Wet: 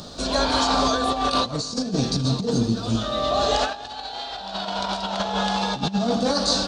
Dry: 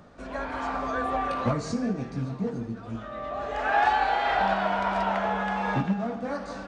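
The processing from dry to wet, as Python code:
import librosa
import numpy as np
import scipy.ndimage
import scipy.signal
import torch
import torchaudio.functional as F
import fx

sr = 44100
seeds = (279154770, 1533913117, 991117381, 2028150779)

p1 = fx.high_shelf_res(x, sr, hz=2900.0, db=12.0, q=3.0)
p2 = fx.over_compress(p1, sr, threshold_db=-31.0, ratio=-0.5)
p3 = p2 + fx.echo_feedback(p2, sr, ms=306, feedback_pct=55, wet_db=-23.0, dry=0)
y = F.gain(torch.from_numpy(p3), 8.0).numpy()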